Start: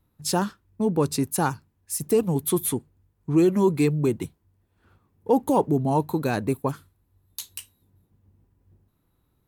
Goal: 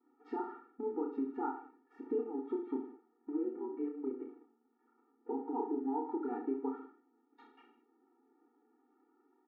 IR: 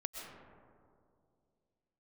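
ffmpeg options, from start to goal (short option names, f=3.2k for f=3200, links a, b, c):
-filter_complex "[0:a]aeval=exprs='val(0)+0.5*0.015*sgn(val(0))':c=same,agate=range=-33dB:threshold=-31dB:ratio=3:detection=peak,lowpass=f=1.4k:w=0.5412,lowpass=f=1.4k:w=1.3066,equalizer=f=580:w=2.6:g=-9.5,acompressor=threshold=-33dB:ratio=6,asplit=3[a][b][c];[a]afade=t=out:st=3.36:d=0.02[d];[b]tremolo=f=140:d=0.919,afade=t=in:st=3.36:d=0.02,afade=t=out:st=5.54:d=0.02[e];[c]afade=t=in:st=5.54:d=0.02[f];[d][e][f]amix=inputs=3:normalize=0,aecho=1:1:30|64.5|104.2|149.8|202.3:0.631|0.398|0.251|0.158|0.1,afftfilt=real='re*eq(mod(floor(b*sr/1024/240),2),1)':imag='im*eq(mod(floor(b*sr/1024/240),2),1)':win_size=1024:overlap=0.75"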